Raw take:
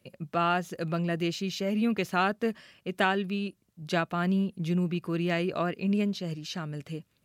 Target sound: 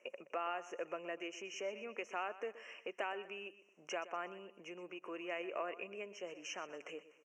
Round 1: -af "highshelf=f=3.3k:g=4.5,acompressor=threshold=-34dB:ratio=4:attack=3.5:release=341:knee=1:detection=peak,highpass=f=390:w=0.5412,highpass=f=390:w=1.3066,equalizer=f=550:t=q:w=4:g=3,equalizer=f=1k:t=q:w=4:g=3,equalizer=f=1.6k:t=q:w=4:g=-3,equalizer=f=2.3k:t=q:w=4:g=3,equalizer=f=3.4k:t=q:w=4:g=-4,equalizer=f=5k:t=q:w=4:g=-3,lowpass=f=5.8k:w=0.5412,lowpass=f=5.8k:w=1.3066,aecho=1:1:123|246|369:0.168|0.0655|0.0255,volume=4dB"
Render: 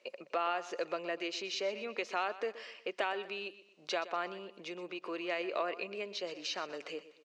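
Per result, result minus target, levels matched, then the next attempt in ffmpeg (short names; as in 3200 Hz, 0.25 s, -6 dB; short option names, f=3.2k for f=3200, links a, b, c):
compressor: peak gain reduction -5.5 dB; 4000 Hz band +3.5 dB
-af "highshelf=f=3.3k:g=4.5,acompressor=threshold=-42dB:ratio=4:attack=3.5:release=341:knee=1:detection=peak,highpass=f=390:w=0.5412,highpass=f=390:w=1.3066,equalizer=f=550:t=q:w=4:g=3,equalizer=f=1k:t=q:w=4:g=3,equalizer=f=1.6k:t=q:w=4:g=-3,equalizer=f=2.3k:t=q:w=4:g=3,equalizer=f=3.4k:t=q:w=4:g=-4,equalizer=f=5k:t=q:w=4:g=-3,lowpass=f=5.8k:w=0.5412,lowpass=f=5.8k:w=1.3066,aecho=1:1:123|246|369:0.168|0.0655|0.0255,volume=4dB"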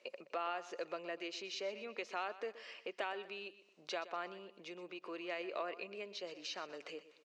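4000 Hz band +3.5 dB
-af "asuperstop=centerf=4100:order=12:qfactor=1.6,highshelf=f=3.3k:g=4.5,acompressor=threshold=-42dB:ratio=4:attack=3.5:release=341:knee=1:detection=peak,highpass=f=390:w=0.5412,highpass=f=390:w=1.3066,equalizer=f=550:t=q:w=4:g=3,equalizer=f=1k:t=q:w=4:g=3,equalizer=f=1.6k:t=q:w=4:g=-3,equalizer=f=2.3k:t=q:w=4:g=3,equalizer=f=3.4k:t=q:w=4:g=-4,equalizer=f=5k:t=q:w=4:g=-3,lowpass=f=5.8k:w=0.5412,lowpass=f=5.8k:w=1.3066,aecho=1:1:123|246|369:0.168|0.0655|0.0255,volume=4dB"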